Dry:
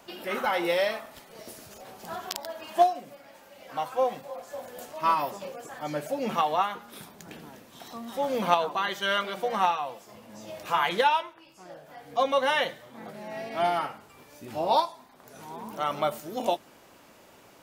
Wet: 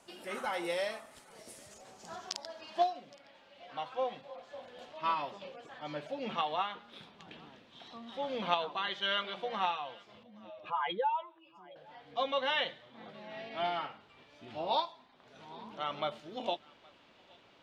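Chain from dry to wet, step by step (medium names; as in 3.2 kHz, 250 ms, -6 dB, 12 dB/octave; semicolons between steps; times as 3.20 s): 10.23–11.76 s: spectral contrast enhancement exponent 2.1; low-pass sweep 9.1 kHz -> 3.5 kHz, 1.56–3.17 s; on a send: thinning echo 818 ms, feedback 17%, high-pass 900 Hz, level -23.5 dB; on the sum: trim -9 dB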